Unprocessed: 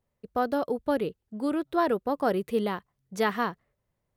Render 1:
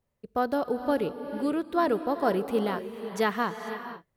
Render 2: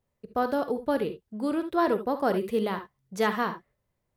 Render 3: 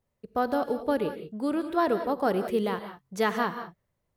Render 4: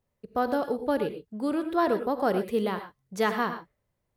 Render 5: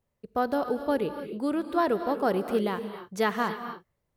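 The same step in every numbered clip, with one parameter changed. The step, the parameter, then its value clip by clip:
gated-style reverb, gate: 520 ms, 90 ms, 210 ms, 140 ms, 310 ms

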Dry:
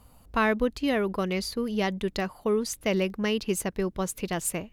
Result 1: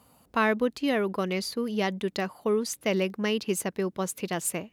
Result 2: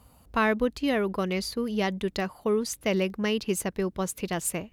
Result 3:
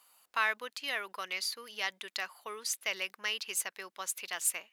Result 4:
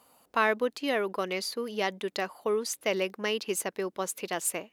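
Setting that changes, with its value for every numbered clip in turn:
high-pass, cutoff frequency: 150 Hz, 41 Hz, 1.4 kHz, 380 Hz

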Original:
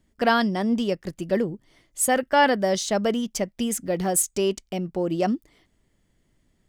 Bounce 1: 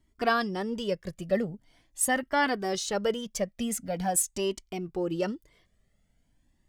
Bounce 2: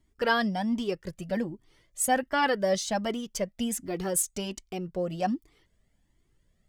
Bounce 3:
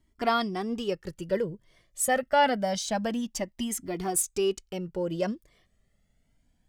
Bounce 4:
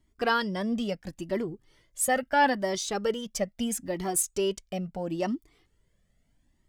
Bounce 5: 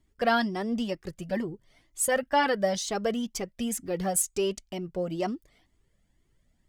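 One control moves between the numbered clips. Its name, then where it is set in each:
Shepard-style flanger, rate: 0.44 Hz, 1.3 Hz, 0.27 Hz, 0.75 Hz, 2.1 Hz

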